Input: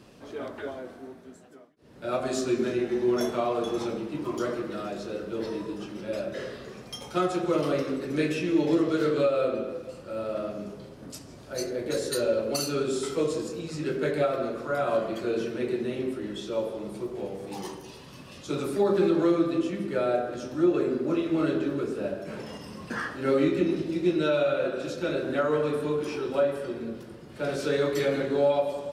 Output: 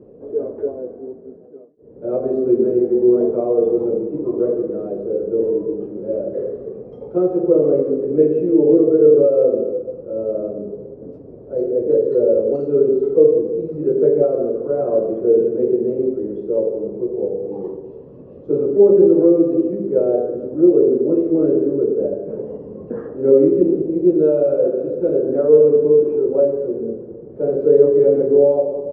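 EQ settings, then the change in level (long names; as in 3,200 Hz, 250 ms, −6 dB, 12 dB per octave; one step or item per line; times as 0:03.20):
low-pass with resonance 460 Hz, resonance Q 4.9
+3.5 dB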